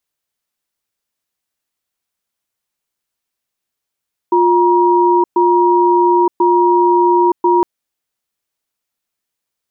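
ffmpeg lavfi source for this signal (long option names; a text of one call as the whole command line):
ffmpeg -f lavfi -i "aevalsrc='0.282*(sin(2*PI*353*t)+sin(2*PI*951*t))*clip(min(mod(t,1.04),0.92-mod(t,1.04))/0.005,0,1)':duration=3.31:sample_rate=44100" out.wav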